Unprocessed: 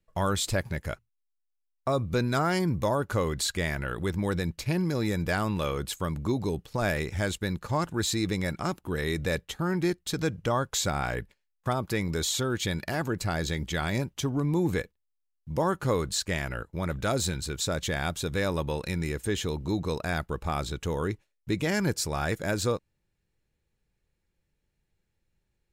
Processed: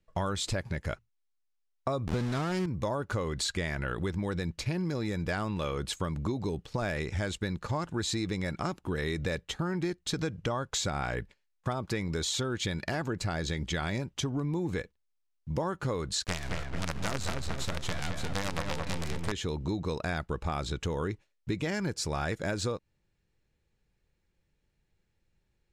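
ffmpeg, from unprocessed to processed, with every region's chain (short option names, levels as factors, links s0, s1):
-filter_complex "[0:a]asettb=1/sr,asplit=3[s0][s1][s2];[s0]atrim=end=2.074[s3];[s1]atrim=start=2.07:end=2.66,asetpts=PTS-STARTPTS,afade=t=in:d=0.004:c=qsin,afade=t=out:st=0.586:d=0.004:c=qsin,lowshelf=f=310:g=10,aeval=exprs='val(0)*gte(abs(val(0)),0.0596)':c=same[s4];[s2]atrim=start=2.656[s5];[s3][s4]acrossfade=d=0.004:c1=hsin:c2=qsin[s6];[s6][s5]acrossfade=d=0.004:c1=qsin:c2=hsin,asettb=1/sr,asplit=3[s7][s8][s9];[s7]atrim=end=16.244[s10];[s8]atrim=start=16.24:end=19.32,asetpts=PTS-STARTPTS,afade=t=in:d=0.004:c=qsin,afade=t=out:st=3.076:d=0.004:c=qsin,lowshelf=f=73:g=11.5,acrusher=bits=4:dc=4:mix=0:aa=0.000001,asplit=2[s11][s12];[s12]adelay=218,lowpass=f=2400:p=1,volume=0.631,asplit=2[s13][s14];[s14]adelay=218,lowpass=f=2400:p=1,volume=0.39,asplit=2[s15][s16];[s16]adelay=218,lowpass=f=2400:p=1,volume=0.39,asplit=2[s17][s18];[s18]adelay=218,lowpass=f=2400:p=1,volume=0.39,asplit=2[s19][s20];[s20]adelay=218,lowpass=f=2400:p=1,volume=0.39[s21];[s11][s13][s15][s17][s19][s21]amix=inputs=6:normalize=0,atrim=end_sample=135828[s22];[s9]atrim=start=19.316[s23];[s10][s22]acrossfade=d=0.004:c1=hsin:c2=qsin[s24];[s24][s23]acrossfade=d=0.004:c1=qsin:c2=hsin,lowpass=7500,acompressor=threshold=0.0316:ratio=6,volume=1.26"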